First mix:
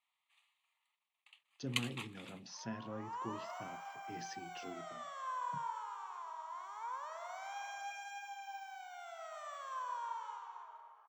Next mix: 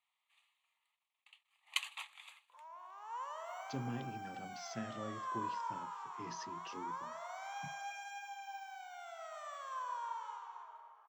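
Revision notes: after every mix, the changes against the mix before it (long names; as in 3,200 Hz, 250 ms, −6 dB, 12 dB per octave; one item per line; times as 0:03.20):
speech: entry +2.10 s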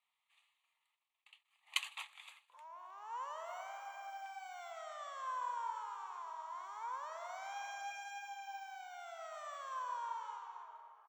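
speech: muted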